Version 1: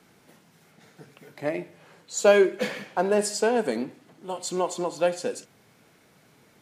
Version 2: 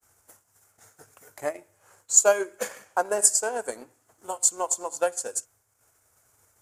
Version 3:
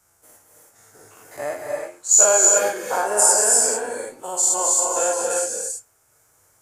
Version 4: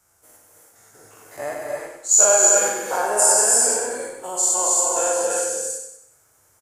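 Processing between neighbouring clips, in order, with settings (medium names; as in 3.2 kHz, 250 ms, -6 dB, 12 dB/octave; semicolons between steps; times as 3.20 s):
expander -53 dBFS; FFT filter 100 Hz 0 dB, 160 Hz -25 dB, 600 Hz -9 dB, 1.4 kHz -5 dB, 2.1 kHz -13 dB, 4 kHz -15 dB, 7.1 kHz +6 dB, 12 kHz +4 dB; transient shaper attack +6 dB, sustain -7 dB; trim +4.5 dB
every event in the spectrogram widened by 120 ms; flange 0.46 Hz, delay 5.4 ms, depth 4.4 ms, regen +68%; gated-style reverb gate 360 ms rising, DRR 0 dB; trim +1.5 dB
feedback delay 95 ms, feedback 43%, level -6 dB; trim -1 dB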